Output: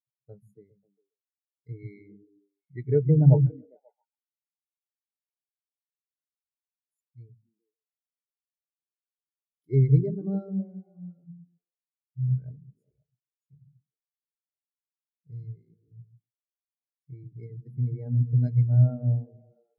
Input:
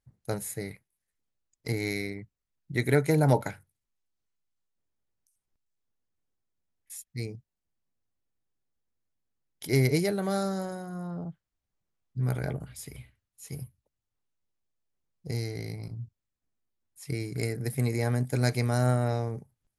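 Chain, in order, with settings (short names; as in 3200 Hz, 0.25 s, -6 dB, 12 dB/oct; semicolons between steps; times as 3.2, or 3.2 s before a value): delay with a stepping band-pass 0.134 s, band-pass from 150 Hz, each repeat 0.7 oct, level -1.5 dB; spectral expander 2.5:1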